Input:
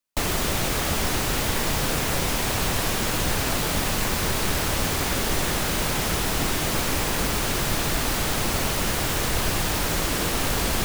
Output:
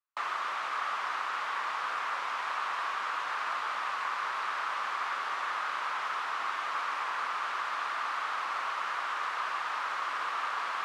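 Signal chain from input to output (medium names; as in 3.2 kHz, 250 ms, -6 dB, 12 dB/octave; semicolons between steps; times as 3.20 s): ladder band-pass 1.3 kHz, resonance 60%; trim +5.5 dB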